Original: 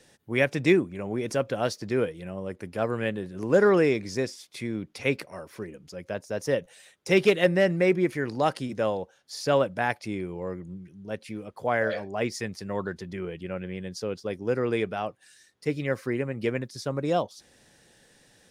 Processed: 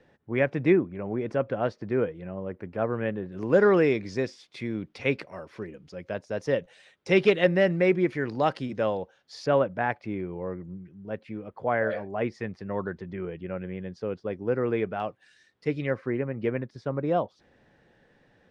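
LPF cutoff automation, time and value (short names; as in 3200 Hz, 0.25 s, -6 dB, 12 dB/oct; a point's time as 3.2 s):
1800 Hz
from 3.32 s 3900 Hz
from 9.46 s 2000 Hz
from 15 s 3500 Hz
from 15.9 s 1900 Hz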